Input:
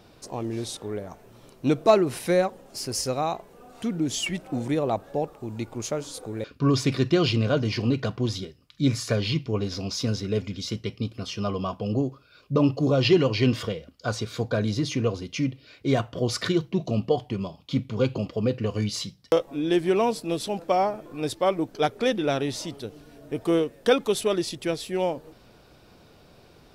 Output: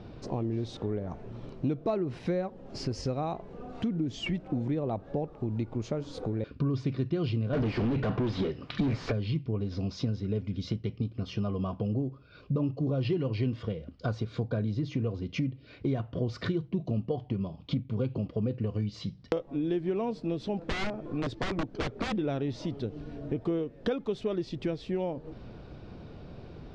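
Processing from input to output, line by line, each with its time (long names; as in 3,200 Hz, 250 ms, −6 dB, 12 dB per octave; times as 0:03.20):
0:07.53–0:09.12: mid-hump overdrive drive 37 dB, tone 1,800 Hz, clips at −10.5 dBFS
0:20.56–0:22.14: wrap-around overflow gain 20.5 dB
whole clip: Bessel low-pass filter 3,600 Hz, order 4; low-shelf EQ 410 Hz +12 dB; downward compressor 4 to 1, threshold −30 dBFS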